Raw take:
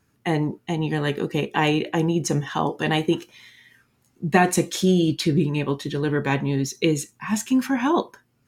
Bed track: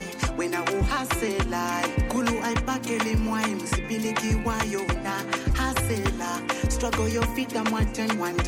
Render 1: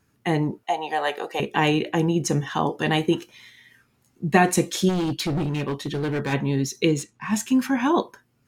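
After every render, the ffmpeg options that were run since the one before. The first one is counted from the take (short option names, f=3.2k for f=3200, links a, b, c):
-filter_complex "[0:a]asettb=1/sr,asplit=3[a][b][c];[a]atrim=end=0.634[d];[b]atrim=start=0.63:end=1.4,asetpts=PTS-STARTPTS,afade=t=in:d=0.004:c=qsin,afade=t=out:st=0.766:d=0.004:c=qsin,highpass=f=710:t=q:w=3.9[e];[c]atrim=start=1.396[f];[d][e]acrossfade=d=0.004:c1=hsin:c2=qsin[g];[g][f]acrossfade=d=0.004:c1=qsin:c2=hsin,asplit=3[h][i][j];[h]afade=t=out:st=4.88:d=0.02[k];[i]volume=21.5dB,asoftclip=hard,volume=-21.5dB,afade=t=in:st=4.88:d=0.02,afade=t=out:st=6.32:d=0.02[l];[j]afade=t=in:st=6.32:d=0.02[m];[k][l][m]amix=inputs=3:normalize=0,asettb=1/sr,asplit=3[n][o][p];[n]atrim=end=6.884[q];[o]atrim=start=6.88:end=7.33,asetpts=PTS-STARTPTS,afade=t=in:d=0.004:c=qsin,afade=t=out:st=0.446:d=0.004:c=qsin,adynamicsmooth=sensitivity=7.5:basefreq=5.6k[r];[p]atrim=start=7.326[s];[q][r]acrossfade=d=0.004:c1=hsin:c2=qsin[t];[t][s]acrossfade=d=0.004:c1=qsin:c2=hsin"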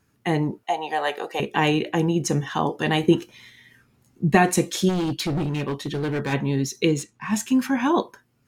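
-filter_complex "[0:a]asettb=1/sr,asplit=3[a][b][c];[a]atrim=end=3.034[d];[b]atrim=start=3.03:end=4.35,asetpts=PTS-STARTPTS,afade=t=in:d=0.004:c=qsin,afade=t=out:st=1.316:d=0.004:c=qsin,lowshelf=f=470:g=6[e];[c]atrim=start=4.346[f];[d][e]acrossfade=d=0.004:c1=hsin:c2=qsin[g];[g][f]acrossfade=d=0.004:c1=qsin:c2=hsin"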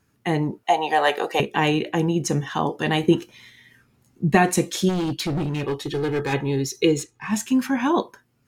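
-filter_complex "[0:a]asplit=3[a][b][c];[a]afade=t=out:st=0.65:d=0.02[d];[b]acontrast=41,afade=t=in:st=0.65:d=0.02,afade=t=out:st=1.41:d=0.02[e];[c]afade=t=in:st=1.41:d=0.02[f];[d][e][f]amix=inputs=3:normalize=0,asettb=1/sr,asplit=3[g][h][i];[g]atrim=end=5.634[j];[h]atrim=start=5.63:end=7.28,asetpts=PTS-STARTPTS,afade=t=in:d=0.004:c=qsin,afade=t=out:st=1.646:d=0.004:c=qsin,aecho=1:1:2.4:0.65,atrim=end_sample=72765[k];[i]atrim=start=7.276[l];[j][k]acrossfade=d=0.004:c1=hsin:c2=qsin[m];[m][l]acrossfade=d=0.004:c1=qsin:c2=hsin"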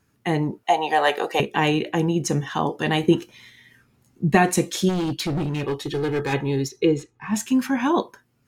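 -filter_complex "[0:a]asplit=3[a][b][c];[a]afade=t=out:st=6.67:d=0.02[d];[b]lowpass=f=1.7k:p=1,afade=t=in:st=6.67:d=0.02,afade=t=out:st=7.34:d=0.02[e];[c]afade=t=in:st=7.34:d=0.02[f];[d][e][f]amix=inputs=3:normalize=0"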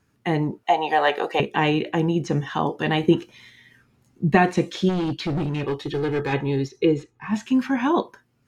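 -filter_complex "[0:a]acrossover=split=4800[a][b];[b]acompressor=threshold=-51dB:ratio=4:attack=1:release=60[c];[a][c]amix=inputs=2:normalize=0,highshelf=f=9.4k:g=-8"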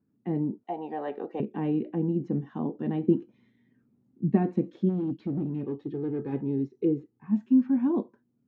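-af "bandpass=f=240:t=q:w=2.2:csg=0"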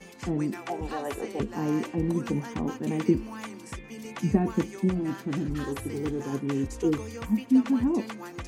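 -filter_complex "[1:a]volume=-13dB[a];[0:a][a]amix=inputs=2:normalize=0"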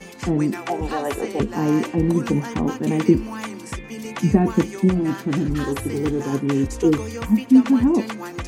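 -af "volume=8dB,alimiter=limit=-3dB:level=0:latency=1"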